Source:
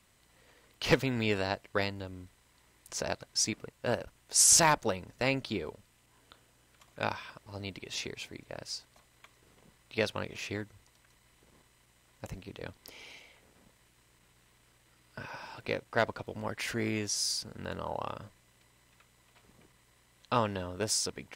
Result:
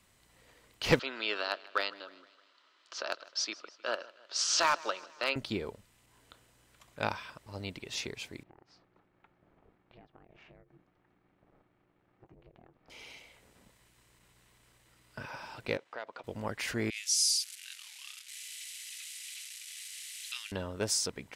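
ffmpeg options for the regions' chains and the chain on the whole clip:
ffmpeg -i in.wav -filter_complex "[0:a]asettb=1/sr,asplit=3[link_01][link_02][link_03];[link_01]atrim=end=0.994[link_04];[link_02]atrim=start=0.99:end=5.36,asetpts=PTS-STARTPTS,afade=type=in:duration=0.004:curve=qsin,afade=type=out:start_time=4.366:duration=0.004:curve=qsin,highpass=frequency=390:width=0.5412,highpass=frequency=390:width=1.3066,equalizer=frequency=460:width_type=q:width=4:gain=-9,equalizer=frequency=810:width_type=q:width=4:gain=-7,equalizer=frequency=1300:width_type=q:width=4:gain=9,equalizer=frequency=2100:width_type=q:width=4:gain=-5,equalizer=frequency=3100:width_type=q:width=4:gain=5,equalizer=frequency=4400:width_type=q:width=4:gain=4,lowpass=frequency=5000:width=0.5412,lowpass=frequency=5000:width=1.3066,volume=18.5dB,asoftclip=hard,volume=-18.5dB,aecho=1:1:155|310|465|620:0.0891|0.0499|0.0279|0.0157,atrim=end_sample=192717[link_05];[link_03]atrim=start=5.356[link_06];[link_04][link_05]acrossfade=duration=0.004:curve1=hsin:curve2=qsin[link_07];[link_07][link_06]acrossfade=duration=0.004:curve1=qsin:curve2=hsin,asettb=1/sr,asplit=3[link_08][link_09][link_10];[link_08]atrim=end=8.434[link_11];[link_09]atrim=start=8.43:end=12.9,asetpts=PTS-STARTPTS,afade=type=in:duration=0.004:curve=qsin,afade=type=out:start_time=4.466:duration=0.004:curve=qsin,lowpass=1400,acompressor=threshold=-51dB:ratio=10:attack=3.2:release=140:knee=1:detection=peak,aeval=exprs='val(0)*sin(2*PI*240*n/s)':channel_layout=same[link_12];[link_10]atrim=start=12.896[link_13];[link_11][link_12]acrossfade=duration=0.004:curve1=hsin:curve2=qsin[link_14];[link_14][link_13]acrossfade=duration=0.004:curve1=qsin:curve2=hsin,asettb=1/sr,asplit=3[link_15][link_16][link_17];[link_15]atrim=end=15.774[link_18];[link_16]atrim=start=15.77:end=16.24,asetpts=PTS-STARTPTS,afade=type=in:duration=0.004:curve=qsin,afade=type=out:start_time=0.466:duration=0.004:curve=qsin,acompressor=threshold=-39dB:ratio=3:attack=3.2:release=140:knee=1:detection=peak,highpass=440,lowpass=4200[link_19];[link_17]atrim=start=16.236[link_20];[link_18][link_19]acrossfade=duration=0.004:curve1=hsin:curve2=qsin[link_21];[link_21][link_20]acrossfade=duration=0.004:curve1=qsin:curve2=hsin,asettb=1/sr,asplit=3[link_22][link_23][link_24];[link_22]atrim=end=16.904[link_25];[link_23]atrim=start=16.9:end=20.52,asetpts=PTS-STARTPTS,afade=type=in:duration=0.004:curve=qsin,afade=type=out:start_time=3.616:duration=0.004:curve=qsin,aeval=exprs='val(0)+0.5*0.0158*sgn(val(0))':channel_layout=same,asuperpass=centerf=5700:order=8:qfactor=0.59,adynamicequalizer=threshold=0.00562:dfrequency=6100:dqfactor=0.7:tfrequency=6100:tqfactor=0.7:attack=5:release=100:ratio=0.375:range=3:mode=boostabove:tftype=highshelf[link_26];[link_24]atrim=start=20.516[link_27];[link_25][link_26]acrossfade=duration=0.004:curve1=hsin:curve2=qsin[link_28];[link_28][link_27]acrossfade=duration=0.004:curve1=qsin:curve2=hsin" out.wav

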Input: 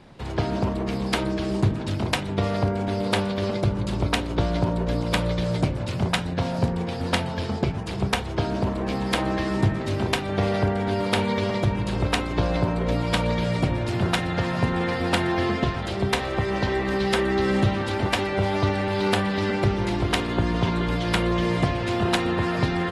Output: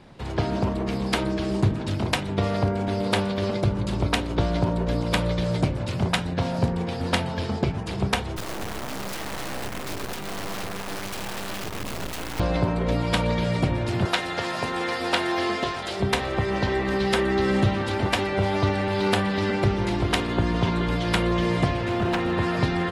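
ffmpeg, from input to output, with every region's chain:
ffmpeg -i in.wav -filter_complex "[0:a]asettb=1/sr,asplit=3[link_01][link_02][link_03];[link_01]atrim=end=8.364[link_04];[link_02]atrim=start=8.36:end=12.4,asetpts=PTS-STARTPTS,afade=type=in:duration=0.004:curve=qsin,afade=type=out:start_time=4.036:duration=0.004:curve=qsin,acompressor=threshold=-23dB:ratio=5:attack=3.2:release=140:knee=1:detection=peak,aeval=exprs='(mod(13.3*val(0)+1,2)-1)/13.3':channel_layout=same,acrusher=bits=4:dc=4:mix=0:aa=0.000001[link_05];[link_03]atrim=start=12.396[link_06];[link_04][link_05]acrossfade=duration=0.004:curve1=hsin:curve2=qsin[link_07];[link_07][link_06]acrossfade=duration=0.004:curve1=qsin:curve2=hsin,asettb=1/sr,asplit=3[link_08][link_09][link_10];[link_08]atrim=end=14.054[link_11];[link_09]atrim=start=14.05:end=16,asetpts=PTS-STARTPTS,afade=type=in:duration=0.004:curve=qsin,afade=type=out:start_time=1.946:duration=0.004:curve=qsin,acrossover=split=4700[link_12][link_13];[link_13]acompressor=threshold=-48dB:ratio=4:attack=1:release=60[link_14];[link_12][link_14]amix=inputs=2:normalize=0,bass=frequency=250:gain=-14,treble=frequency=4000:gain=9,asplit=2[link_15][link_16];[link_16]adelay=20,volume=-12dB[link_17];[link_15][link_17]amix=inputs=2:normalize=0,atrim=end_sample=85995[link_18];[link_10]atrim=start=15.996[link_19];[link_11][link_18]acrossfade=duration=0.004:curve1=hsin:curve2=qsin[link_20];[link_20][link_19]acrossfade=duration=0.004:curve1=qsin:curve2=hsin,asettb=1/sr,asplit=3[link_21][link_22][link_23];[link_21]atrim=end=21.814[link_24];[link_22]atrim=start=21.81:end=22.33,asetpts=PTS-STARTPTS,afade=type=in:duration=0.004:curve=qsin,afade=type=out:start_time=0.516:duration=0.004:curve=qsin,acrossover=split=2900[link_25][link_26];[link_26]acompressor=threshold=-43dB:ratio=4:attack=1:release=60[link_27];[link_25][link_27]amix=inputs=2:normalize=0,asoftclip=type=hard:threshold=-19.5dB[link_28];[link_23]atrim=start=22.326[link_29];[link_24][link_28]acrossfade=duration=0.004:curve1=hsin:curve2=qsin[link_30];[link_30][link_29]acrossfade=duration=0.004:curve1=qsin:curve2=hsin" out.wav

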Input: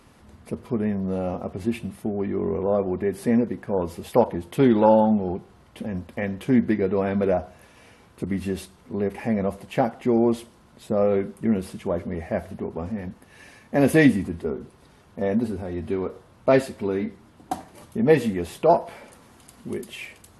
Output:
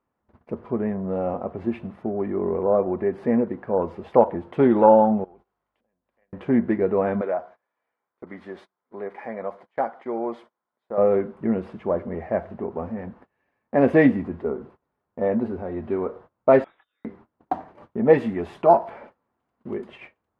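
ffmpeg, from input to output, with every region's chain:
ffmpeg -i in.wav -filter_complex "[0:a]asettb=1/sr,asplit=3[link_01][link_02][link_03];[link_01]atrim=end=5.244[link_04];[link_02]atrim=start=5.24:end=6.33,asetpts=PTS-STARTPTS,afade=type=in:duration=0.004:curve=qsin,afade=type=out:start_time=1.086:duration=0.004:curve=qsin,acompressor=threshold=-43dB:ratio=8:attack=3.2:release=140:knee=1:detection=peak,aemphasis=mode=production:type=riaa,aeval=exprs='val(0)+0.001*(sin(2*PI*50*n/s)+sin(2*PI*2*50*n/s)/2+sin(2*PI*3*50*n/s)/3+sin(2*PI*4*50*n/s)/4+sin(2*PI*5*50*n/s)/5)':channel_layout=same[link_05];[link_03]atrim=start=6.326[link_06];[link_04][link_05]acrossfade=duration=0.004:curve1=hsin:curve2=qsin[link_07];[link_07][link_06]acrossfade=duration=0.004:curve1=qsin:curve2=hsin,asettb=1/sr,asplit=3[link_08][link_09][link_10];[link_08]atrim=end=7.214[link_11];[link_09]atrim=start=7.21:end=10.98,asetpts=PTS-STARTPTS,afade=type=in:duration=0.004:curve=qsin,afade=type=out:start_time=3.766:duration=0.004:curve=qsin,highpass=frequency=1000:poles=1,bandreject=frequency=2700:width=6.8[link_12];[link_10]atrim=start=10.976[link_13];[link_11][link_12]acrossfade=duration=0.004:curve1=hsin:curve2=qsin[link_14];[link_14][link_13]acrossfade=duration=0.004:curve1=qsin:curve2=hsin,asettb=1/sr,asplit=3[link_15][link_16][link_17];[link_15]atrim=end=16.644[link_18];[link_16]atrim=start=16.64:end=17.05,asetpts=PTS-STARTPTS,afade=type=in:duration=0.004:curve=qsin,afade=type=out:start_time=0.406:duration=0.004:curve=qsin,aderivative,asplit=2[link_19][link_20];[link_20]adelay=24,volume=-3dB[link_21];[link_19][link_21]amix=inputs=2:normalize=0,atrim=end_sample=18081,lowpass=frequency=3400:width_type=q:width=0.5098,lowpass=frequency=3400:width_type=q:width=0.6013,lowpass=frequency=3400:width_type=q:width=0.9,lowpass=frequency=3400:width_type=q:width=2.563,afreqshift=-4000[link_22];[link_17]atrim=start=17.046[link_23];[link_18][link_22]acrossfade=duration=0.004:curve1=hsin:curve2=qsin[link_24];[link_24][link_23]acrossfade=duration=0.004:curve1=qsin:curve2=hsin,asettb=1/sr,asplit=3[link_25][link_26][link_27];[link_25]atrim=end=18.134[link_28];[link_26]atrim=start=18.13:end=18.9,asetpts=PTS-STARTPTS,afade=type=in:duration=0.004:curve=qsin,afade=type=out:start_time=0.766:duration=0.004:curve=qsin,aemphasis=mode=production:type=50kf,bandreject=frequency=500:width=5.3[link_29];[link_27]atrim=start=18.896[link_30];[link_28][link_29]acrossfade=duration=0.004:curve1=hsin:curve2=qsin[link_31];[link_31][link_30]acrossfade=duration=0.004:curve1=qsin:curve2=hsin,lowpass=1300,agate=range=-25dB:threshold=-46dB:ratio=16:detection=peak,lowshelf=frequency=300:gain=-11,volume=5.5dB" out.wav

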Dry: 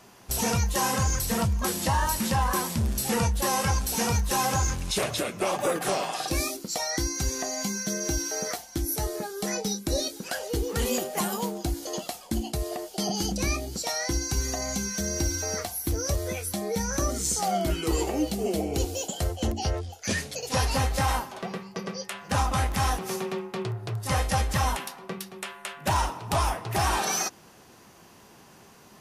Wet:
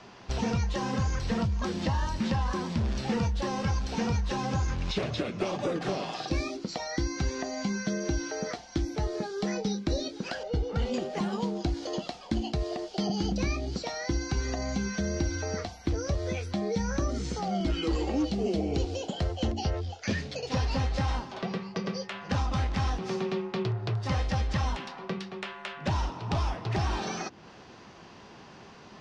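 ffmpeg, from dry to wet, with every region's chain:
ffmpeg -i in.wav -filter_complex "[0:a]asettb=1/sr,asplit=3[link_01][link_02][link_03];[link_01]atrim=end=10.434[link_04];[link_02]atrim=start=10.43:end=10.94,asetpts=PTS-STARTPTS,afade=type=in:duration=0.004:curve=qsin,afade=type=out:start_time=0.506:duration=0.004:curve=qsin,lowpass=frequency=1200:poles=1,aecho=1:1:1.4:0.54,atrim=end_sample=22491[link_05];[link_03]atrim=start=10.936[link_06];[link_04][link_05]acrossfade=duration=0.004:curve1=hsin:curve2=qsin[link_07];[link_07][link_06]acrossfade=duration=0.004:curve1=qsin:curve2=hsin,asettb=1/sr,asplit=3[link_08][link_09][link_10];[link_08]atrim=end=17.604[link_11];[link_09]atrim=start=17.6:end=18.31,asetpts=PTS-STARTPTS,afade=type=in:duration=0.004:curve=qsin,afade=type=out:start_time=0.706:duration=0.004:curve=qsin,aecho=1:1:3.7:0.49,atrim=end_sample=31311,asoftclip=type=hard:threshold=-20.5dB[link_12];[link_10]atrim=start=18.306[link_13];[link_11][link_12]acrossfade=duration=0.004:curve1=hsin:curve2=qsin[link_14];[link_14][link_13]acrossfade=duration=0.004:curve1=qsin:curve2=hsin,acrossover=split=380|3300[link_15][link_16][link_17];[link_15]acompressor=threshold=-30dB:ratio=4[link_18];[link_16]acompressor=threshold=-40dB:ratio=4[link_19];[link_17]acompressor=threshold=-42dB:ratio=4[link_20];[link_18][link_19][link_20]amix=inputs=3:normalize=0,lowpass=frequency=5100:width=0.5412,lowpass=frequency=5100:width=1.3066,volume=3.5dB" out.wav

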